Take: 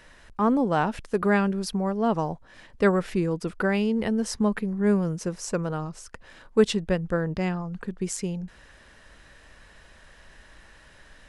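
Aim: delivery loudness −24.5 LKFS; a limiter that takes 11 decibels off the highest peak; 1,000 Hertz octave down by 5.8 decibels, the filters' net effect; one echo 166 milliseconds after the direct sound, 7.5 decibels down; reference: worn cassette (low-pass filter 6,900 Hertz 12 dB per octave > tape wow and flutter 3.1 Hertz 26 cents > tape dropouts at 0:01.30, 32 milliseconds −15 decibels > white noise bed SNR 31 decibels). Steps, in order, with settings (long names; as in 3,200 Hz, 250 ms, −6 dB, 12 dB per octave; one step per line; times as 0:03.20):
parametric band 1,000 Hz −8 dB
brickwall limiter −19 dBFS
low-pass filter 6,900 Hz 12 dB per octave
single-tap delay 166 ms −7.5 dB
tape wow and flutter 3.1 Hz 26 cents
tape dropouts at 0:01.30, 32 ms −15 dB
white noise bed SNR 31 dB
level +4.5 dB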